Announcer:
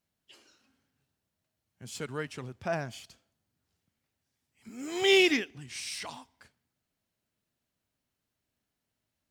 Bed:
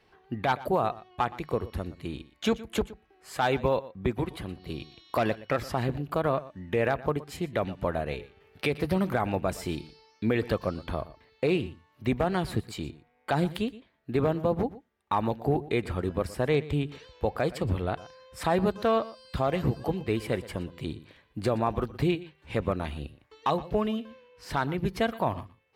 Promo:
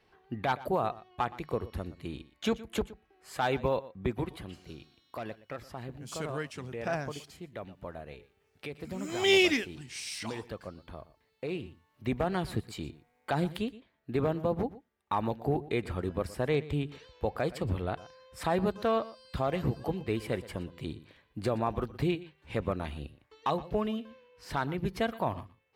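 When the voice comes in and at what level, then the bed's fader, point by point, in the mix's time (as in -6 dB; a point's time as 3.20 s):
4.20 s, -1.0 dB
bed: 4.25 s -3.5 dB
4.96 s -13 dB
11.21 s -13 dB
12.20 s -3.5 dB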